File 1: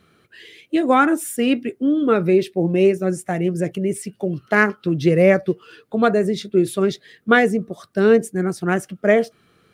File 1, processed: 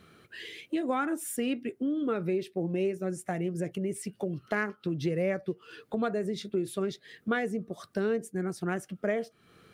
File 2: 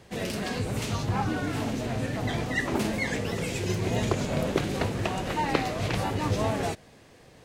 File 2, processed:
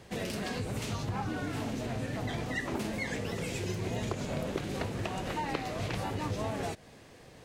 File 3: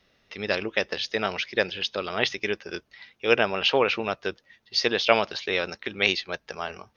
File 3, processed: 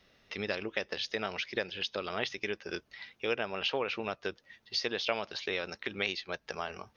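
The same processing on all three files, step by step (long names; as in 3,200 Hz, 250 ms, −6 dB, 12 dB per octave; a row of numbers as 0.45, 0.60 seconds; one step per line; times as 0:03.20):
downward compressor 2.5 to 1, threshold −34 dBFS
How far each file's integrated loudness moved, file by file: −13.5, −6.0, −9.5 LU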